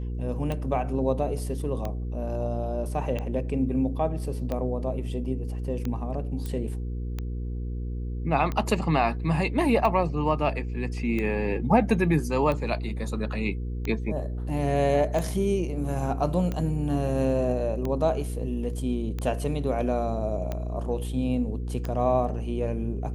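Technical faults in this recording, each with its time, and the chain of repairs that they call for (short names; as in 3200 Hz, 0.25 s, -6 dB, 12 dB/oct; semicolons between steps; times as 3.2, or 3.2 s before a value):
hum 60 Hz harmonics 8 -31 dBFS
tick 45 rpm -18 dBFS
6.46 pop -20 dBFS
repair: de-click; de-hum 60 Hz, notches 8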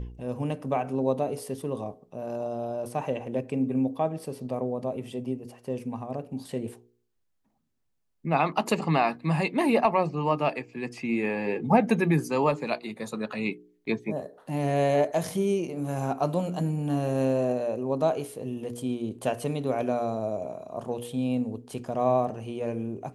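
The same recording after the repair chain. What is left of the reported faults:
none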